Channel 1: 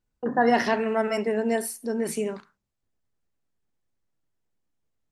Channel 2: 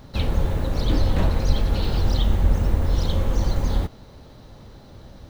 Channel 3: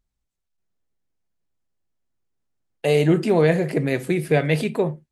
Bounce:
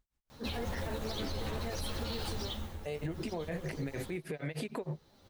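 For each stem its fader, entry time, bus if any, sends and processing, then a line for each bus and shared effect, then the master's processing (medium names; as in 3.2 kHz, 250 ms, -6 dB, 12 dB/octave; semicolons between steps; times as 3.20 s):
-8.0 dB, 0.15 s, bus A, no send, none
-3.0 dB, 0.30 s, no bus, no send, tilt EQ +2 dB/octave; three-phase chorus; auto duck -13 dB, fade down 0.55 s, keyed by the third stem
-1.5 dB, 0.00 s, bus A, no send, peaking EQ 1.2 kHz +4 dB 2.4 oct
bus A: 0.0 dB, tremolo 6.5 Hz, depth 99%; compression, threshold -29 dBFS, peak gain reduction 14 dB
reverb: none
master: peak limiter -28 dBFS, peak gain reduction 9.5 dB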